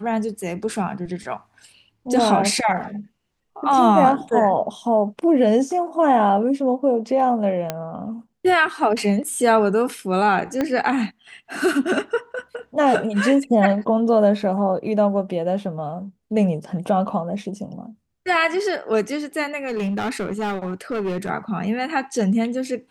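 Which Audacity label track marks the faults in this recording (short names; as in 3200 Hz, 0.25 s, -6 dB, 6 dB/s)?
7.700000	7.700000	pop -9 dBFS
10.610000	10.610000	pop -10 dBFS
19.670000	21.300000	clipped -20.5 dBFS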